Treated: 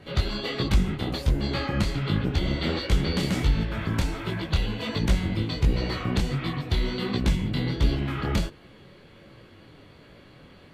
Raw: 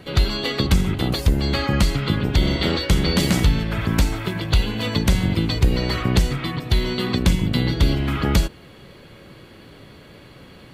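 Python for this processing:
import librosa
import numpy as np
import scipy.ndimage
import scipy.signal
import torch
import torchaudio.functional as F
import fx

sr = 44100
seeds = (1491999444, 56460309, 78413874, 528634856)

p1 = fx.high_shelf(x, sr, hz=8000.0, db=-9.5)
p2 = fx.rider(p1, sr, range_db=10, speed_s=0.5)
p3 = p1 + (p2 * 10.0 ** (-1.0 / 20.0))
p4 = fx.detune_double(p3, sr, cents=48)
y = p4 * 10.0 ** (-7.5 / 20.0)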